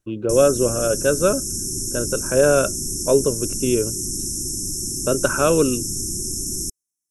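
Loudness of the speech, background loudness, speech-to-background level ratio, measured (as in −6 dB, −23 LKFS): −20.5 LKFS, −24.5 LKFS, 4.0 dB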